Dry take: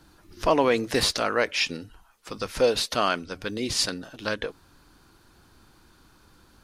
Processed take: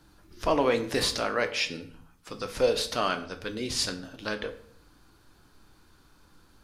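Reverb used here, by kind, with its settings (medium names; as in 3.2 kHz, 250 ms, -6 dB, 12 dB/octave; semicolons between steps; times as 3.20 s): simulated room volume 91 m³, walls mixed, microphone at 0.35 m; trim -4 dB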